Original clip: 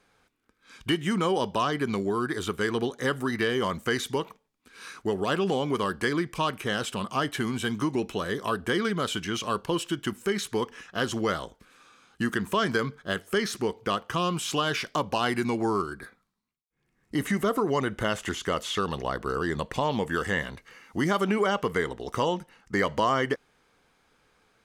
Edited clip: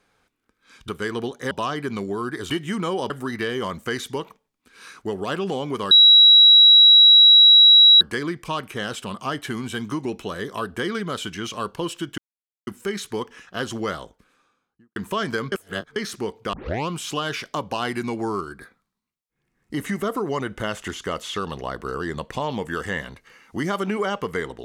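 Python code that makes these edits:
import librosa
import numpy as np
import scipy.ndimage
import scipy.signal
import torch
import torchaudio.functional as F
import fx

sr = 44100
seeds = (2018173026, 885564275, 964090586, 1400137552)

y = fx.studio_fade_out(x, sr, start_s=11.31, length_s=1.06)
y = fx.edit(y, sr, fx.swap(start_s=0.88, length_s=0.6, other_s=2.47, other_length_s=0.63),
    fx.insert_tone(at_s=5.91, length_s=2.1, hz=3880.0, db=-7.5),
    fx.insert_silence(at_s=10.08, length_s=0.49),
    fx.reverse_span(start_s=12.93, length_s=0.44),
    fx.tape_start(start_s=13.94, length_s=0.35), tone=tone)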